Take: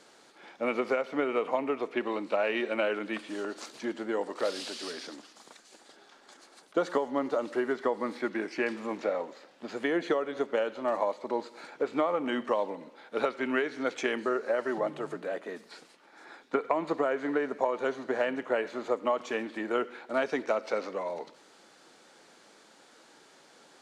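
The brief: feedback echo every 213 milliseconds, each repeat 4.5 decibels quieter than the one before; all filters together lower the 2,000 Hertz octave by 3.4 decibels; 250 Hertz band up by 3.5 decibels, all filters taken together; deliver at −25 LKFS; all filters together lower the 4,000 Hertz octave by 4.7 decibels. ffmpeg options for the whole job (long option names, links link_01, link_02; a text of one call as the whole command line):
ffmpeg -i in.wav -af "equalizer=frequency=250:width_type=o:gain=4.5,equalizer=frequency=2000:width_type=o:gain=-3.5,equalizer=frequency=4000:width_type=o:gain=-5,aecho=1:1:213|426|639|852|1065|1278|1491|1704|1917:0.596|0.357|0.214|0.129|0.0772|0.0463|0.0278|0.0167|0.01,volume=4dB" out.wav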